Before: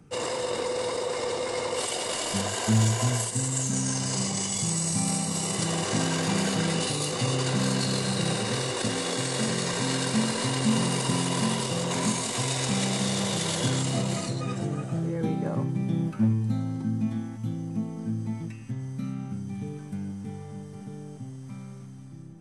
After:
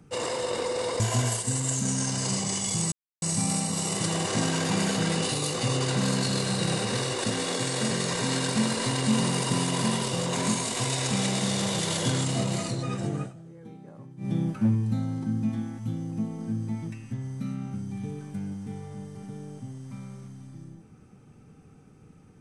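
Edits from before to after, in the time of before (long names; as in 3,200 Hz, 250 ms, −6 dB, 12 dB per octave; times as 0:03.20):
0:01.00–0:02.88: remove
0:04.80: splice in silence 0.30 s
0:14.80–0:15.88: duck −17.5 dB, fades 0.12 s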